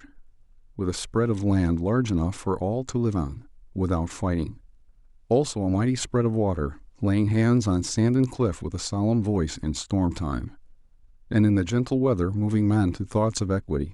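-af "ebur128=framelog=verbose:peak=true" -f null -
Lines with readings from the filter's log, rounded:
Integrated loudness:
  I:         -24.9 LUFS
  Threshold: -35.5 LUFS
Loudness range:
  LRA:         3.6 LU
  Threshold: -45.6 LUFS
  LRA low:   -27.6 LUFS
  LRA high:  -24.0 LUFS
True peak:
  Peak:      -10.2 dBFS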